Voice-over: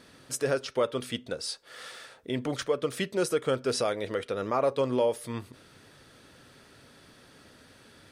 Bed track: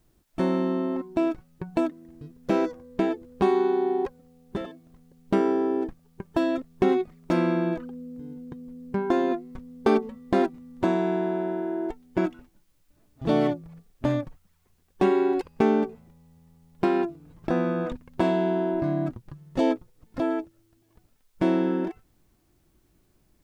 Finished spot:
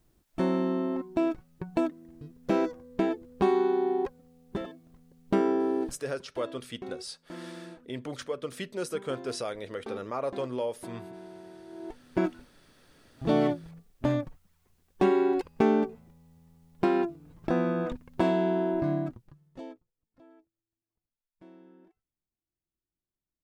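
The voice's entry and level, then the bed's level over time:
5.60 s, −6.0 dB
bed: 0:05.94 −2.5 dB
0:06.23 −19.5 dB
0:11.64 −19.5 dB
0:12.06 −2 dB
0:18.94 −2 dB
0:20.04 −30.5 dB

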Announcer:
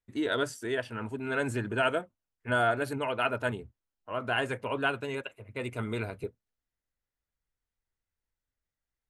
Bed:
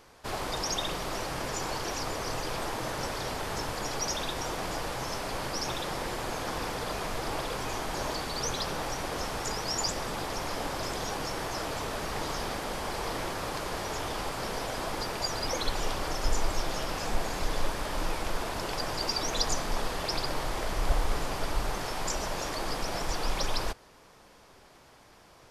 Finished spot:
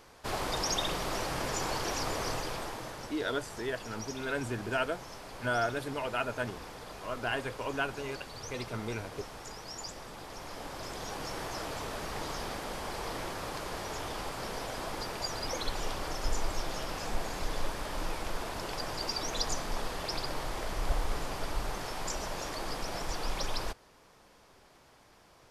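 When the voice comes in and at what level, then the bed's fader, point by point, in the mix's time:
2.95 s, −4.0 dB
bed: 0:02.26 0 dB
0:03.16 −11.5 dB
0:10.17 −11.5 dB
0:11.36 −4 dB

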